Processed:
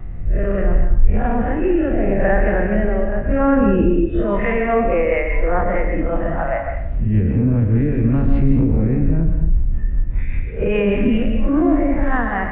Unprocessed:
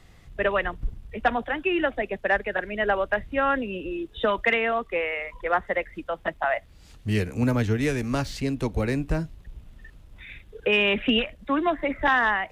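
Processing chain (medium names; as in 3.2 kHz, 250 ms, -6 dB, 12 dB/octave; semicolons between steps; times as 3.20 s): spectral blur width 91 ms; low-pass 2.4 kHz 24 dB/octave; tilt EQ -3.5 dB/octave; band-stop 430 Hz, Q 14; in parallel at +1 dB: compressor with a negative ratio -24 dBFS; on the sum: peak limiter -15.5 dBFS, peak gain reduction 10.5 dB; rotary cabinet horn 0.75 Hz, later 5 Hz, at 4.01 s; reverse echo 51 ms -11.5 dB; plate-style reverb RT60 0.67 s, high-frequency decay 0.9×, pre-delay 110 ms, DRR 4 dB; trim +6 dB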